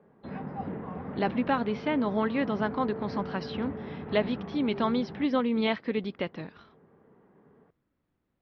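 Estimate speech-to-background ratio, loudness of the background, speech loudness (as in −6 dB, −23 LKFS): 8.5 dB, −38.5 LKFS, −30.0 LKFS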